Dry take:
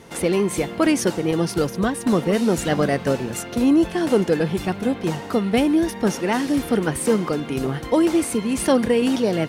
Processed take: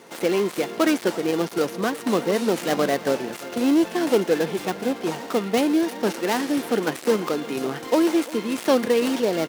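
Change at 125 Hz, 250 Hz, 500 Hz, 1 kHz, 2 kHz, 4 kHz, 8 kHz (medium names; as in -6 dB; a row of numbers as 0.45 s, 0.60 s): -9.5 dB, -3.5 dB, -1.0 dB, -0.5 dB, -0.5 dB, 0.0 dB, -5.0 dB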